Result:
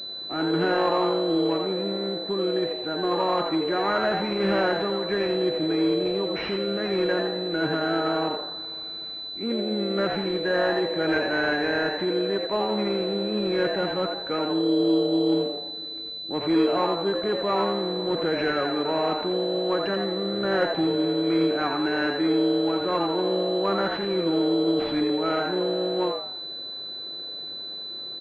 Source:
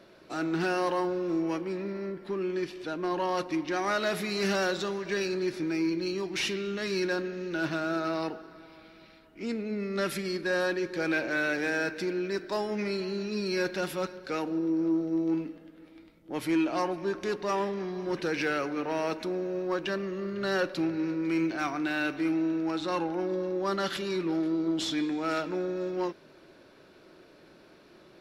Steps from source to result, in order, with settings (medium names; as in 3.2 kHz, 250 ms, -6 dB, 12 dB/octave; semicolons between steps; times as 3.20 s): on a send: frequency-shifting echo 84 ms, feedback 33%, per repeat +130 Hz, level -5 dB; on the sum: class-D stage that switches slowly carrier 4 kHz; trim +4.5 dB